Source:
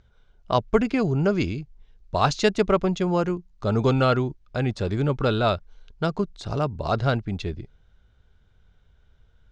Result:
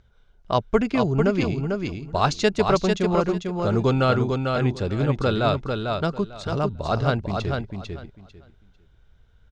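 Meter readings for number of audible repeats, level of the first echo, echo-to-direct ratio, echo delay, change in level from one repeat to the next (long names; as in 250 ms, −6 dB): 3, −4.5 dB, −4.5 dB, 447 ms, −14.5 dB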